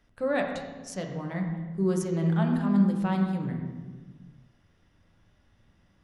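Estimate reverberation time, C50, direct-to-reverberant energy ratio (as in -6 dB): 1.5 s, 4.5 dB, 1.5 dB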